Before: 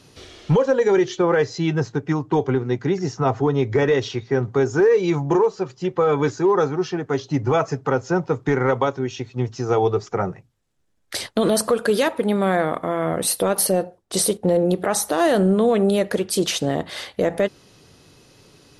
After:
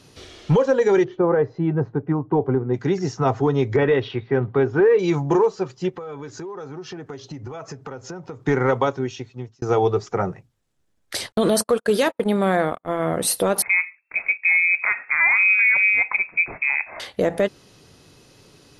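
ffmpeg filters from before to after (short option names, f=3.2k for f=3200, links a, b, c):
-filter_complex "[0:a]asplit=3[a][b][c];[a]afade=t=out:st=1.03:d=0.02[d];[b]lowpass=1.1k,afade=t=in:st=1.03:d=0.02,afade=t=out:st=2.73:d=0.02[e];[c]afade=t=in:st=2.73:d=0.02[f];[d][e][f]amix=inputs=3:normalize=0,asettb=1/sr,asplit=3[g][h][i];[g]atrim=end=3.764[j];[h]atrim=start=3.76:end=4.99,asetpts=PTS-STARTPTS,afade=t=in:d=0.004:c=qsin,afade=t=out:st=1.226:d=0.004:c=qsin,lowpass=f=3.4k:w=0.5412,lowpass=f=3.4k:w=1.3066[k];[i]atrim=start=4.986[l];[j][k]acrossfade=d=0.004:c1=hsin:c2=qsin[m];[m][l]acrossfade=d=0.004:c1=qsin:c2=hsin,asplit=3[n][o][p];[n]afade=t=out:st=5.89:d=0.02[q];[o]acompressor=threshold=-30dB:ratio=12:attack=3.2:release=140:knee=1:detection=peak,afade=t=in:st=5.89:d=0.02,afade=t=out:st=8.41:d=0.02[r];[p]afade=t=in:st=8.41:d=0.02[s];[q][r][s]amix=inputs=3:normalize=0,asettb=1/sr,asplit=3[t][u][v];[t]atrim=end=11.324[w];[u]atrim=start=11.32:end=13,asetpts=PTS-STARTPTS,afade=t=in:d=0.004:c=qsin,afade=t=out:st=1.676:d=0.004:c=qsin,agate=range=-44dB:threshold=-24dB:ratio=16:release=100:detection=peak[x];[v]atrim=start=12.996[y];[w][x]acrossfade=d=0.004:c1=hsin:c2=qsin[z];[z][y]acrossfade=d=0.004:c1=qsin:c2=hsin,asettb=1/sr,asplit=3[aa][ab][ac];[aa]atrim=end=13.624[ad];[ab]atrim=start=13.62:end=17,asetpts=PTS-STARTPTS,afade=t=in:d=0.004:c=qsin,afade=t=out:st=3.376:d=0.004:c=qsin,lowpass=f=2.3k:t=q:w=0.5098,lowpass=f=2.3k:t=q:w=0.6013,lowpass=f=2.3k:t=q:w=0.9,lowpass=f=2.3k:t=q:w=2.563,afreqshift=-2700[ae];[ac]atrim=start=16.996[af];[ad][ae]acrossfade=d=0.004:c1=hsin:c2=qsin[ag];[ag][af]acrossfade=d=0.004:c1=qsin:c2=hsin,asplit=2[ah][ai];[ah]atrim=end=9.62,asetpts=PTS-STARTPTS,afade=t=out:st=8.99:d=0.63[aj];[ai]atrim=start=9.62,asetpts=PTS-STARTPTS,afade=t=in:d=0.004:c=hsin[ak];[aj][ak]concat=n=2:v=0:a=1"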